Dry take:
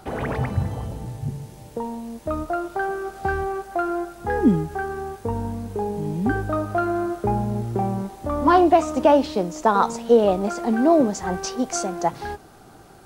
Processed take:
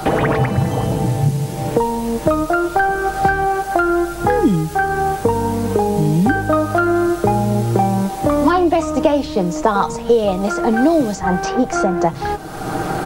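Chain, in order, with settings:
comb filter 6.4 ms, depth 43%
multiband upward and downward compressor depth 100%
level +6 dB

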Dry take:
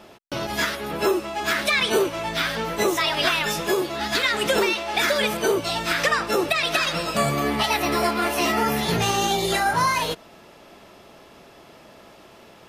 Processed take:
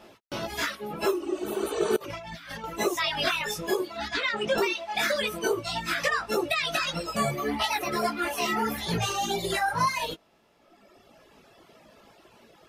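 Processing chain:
0:01.21–0:01.93: healed spectral selection 250–8,600 Hz both
chorus effect 1.7 Hz, delay 17 ms, depth 2.4 ms
reverb reduction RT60 1.8 s
0:01.96–0:02.64: compressor whose output falls as the input rises −40 dBFS, ratio −1
0:04.08–0:04.58: high-frequency loss of the air 110 metres
level −1 dB

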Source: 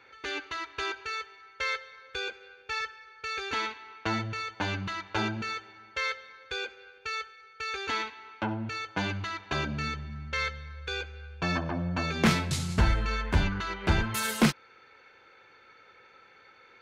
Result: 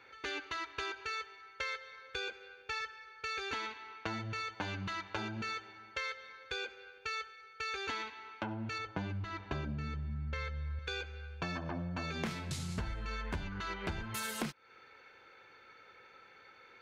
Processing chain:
0:08.78–0:10.79: spectral tilt −2.5 dB per octave
downward compressor 10 to 1, threshold −33 dBFS, peak gain reduction 15.5 dB
level −2 dB

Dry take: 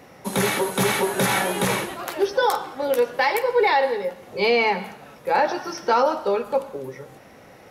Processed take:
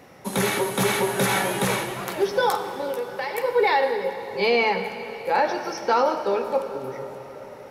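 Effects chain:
0:02.69–0:03.38: downward compressor, threshold −25 dBFS, peak gain reduction 9.5 dB
on a send: convolution reverb RT60 5.1 s, pre-delay 50 ms, DRR 9.5 dB
on the sum: level −1.5 dB

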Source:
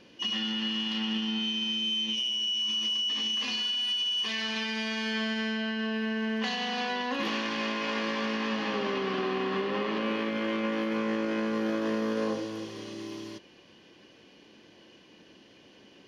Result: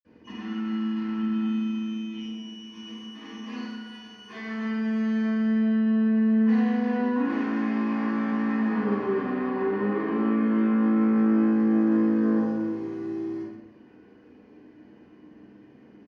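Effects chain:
double-tracking delay 49 ms −4 dB
slap from a distant wall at 21 metres, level −7 dB
convolution reverb RT60 0.65 s, pre-delay 47 ms

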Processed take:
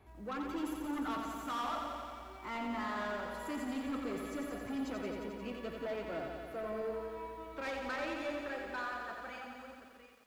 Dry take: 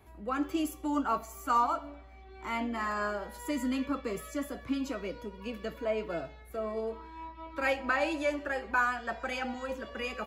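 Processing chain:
fade-out on the ending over 2.90 s
soft clipping −33.5 dBFS, distortion −8 dB
high-shelf EQ 6,200 Hz −9.5 dB
feedback echo at a low word length 88 ms, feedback 80%, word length 11 bits, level −5 dB
level −2.5 dB

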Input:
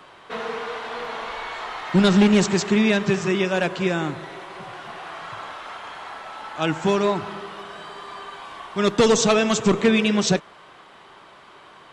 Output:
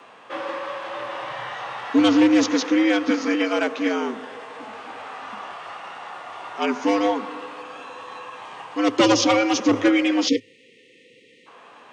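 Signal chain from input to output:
formants moved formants −3 semitones
time-frequency box erased 0:10.28–0:11.46, 440–1,700 Hz
frequency shifter +100 Hz

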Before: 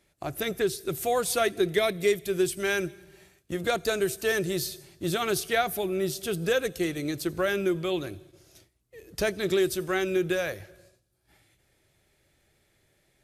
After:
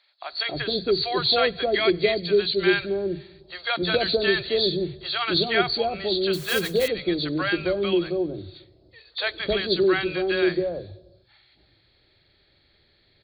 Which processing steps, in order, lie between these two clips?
hearing-aid frequency compression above 3,200 Hz 4 to 1
0:06.33–0:06.88: noise that follows the level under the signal 15 dB
three-band delay without the direct sound highs, mids, lows 270/310 ms, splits 160/720 Hz
0:03.94–0:04.49: multiband upward and downward compressor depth 100%
level +5 dB

